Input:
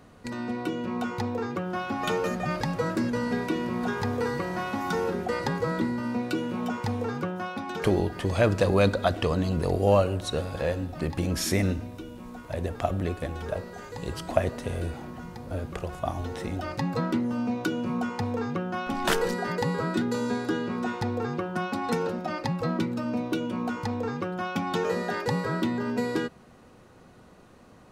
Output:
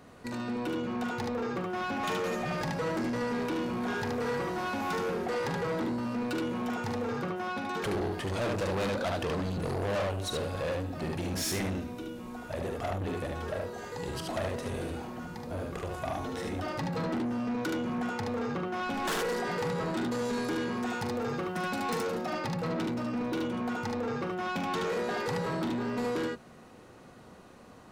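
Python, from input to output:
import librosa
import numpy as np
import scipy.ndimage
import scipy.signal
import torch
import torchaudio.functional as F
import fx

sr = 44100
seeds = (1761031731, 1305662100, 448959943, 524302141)

y = fx.high_shelf(x, sr, hz=6200.0, db=9.0, at=(20.25, 22.3))
y = fx.room_early_taps(y, sr, ms=(43, 74), db=(-10.5, -3.5))
y = 10.0 ** (-27.5 / 20.0) * np.tanh(y / 10.0 ** (-27.5 / 20.0))
y = fx.low_shelf(y, sr, hz=100.0, db=-7.0)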